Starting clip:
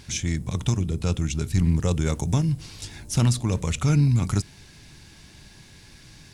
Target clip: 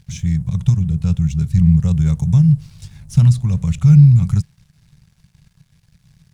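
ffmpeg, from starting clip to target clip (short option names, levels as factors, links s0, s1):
-af "aeval=exprs='sgn(val(0))*max(abs(val(0))-0.00447,0)':c=same,lowshelf=f=220:t=q:w=3:g=11,volume=0.531"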